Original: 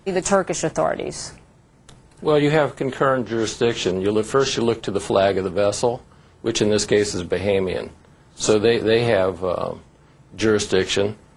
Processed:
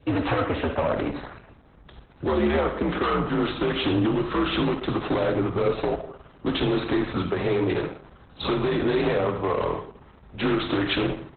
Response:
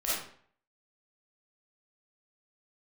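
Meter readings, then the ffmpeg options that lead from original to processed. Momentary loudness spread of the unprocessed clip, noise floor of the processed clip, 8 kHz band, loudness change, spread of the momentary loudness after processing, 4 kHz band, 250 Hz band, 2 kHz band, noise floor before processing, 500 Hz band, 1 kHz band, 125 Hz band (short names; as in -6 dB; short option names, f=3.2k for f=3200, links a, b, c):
10 LU, -52 dBFS, under -40 dB, -4.5 dB, 9 LU, -4.5 dB, -1.0 dB, -4.0 dB, -52 dBFS, -6.5 dB, -2.5 dB, -1.5 dB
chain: -filter_complex "[0:a]asoftclip=type=tanh:threshold=-7dB,afreqshift=-76,equalizer=f=7.1k:w=2.4:g=-11,acrossover=split=99|220[a][b][c];[a]acompressor=threshold=-36dB:ratio=4[d];[b]acompressor=threshold=-29dB:ratio=4[e];[c]acompressor=threshold=-23dB:ratio=4[f];[d][e][f]amix=inputs=3:normalize=0,aecho=1:1:63|126|189|252|315:0.133|0.0707|0.0375|0.0199|0.0105,aeval=exprs='val(0)+0.00224*(sin(2*PI*50*n/s)+sin(2*PI*2*50*n/s)/2+sin(2*PI*3*50*n/s)/3+sin(2*PI*4*50*n/s)/4+sin(2*PI*5*50*n/s)/5)':c=same,adynamicequalizer=threshold=0.00562:dfrequency=1100:dqfactor=1.7:tfrequency=1100:tqfactor=1.7:attack=5:release=100:ratio=0.375:range=3.5:mode=boostabove:tftype=bell,highpass=44,bandreject=f=7.1k:w=6.5,volume=21dB,asoftclip=hard,volume=-21dB,asplit=2[g][h];[1:a]atrim=start_sample=2205,lowpass=5.7k[i];[h][i]afir=irnorm=-1:irlink=0,volume=-12dB[j];[g][j]amix=inputs=2:normalize=0,volume=1dB" -ar 48000 -c:a libopus -b:a 8k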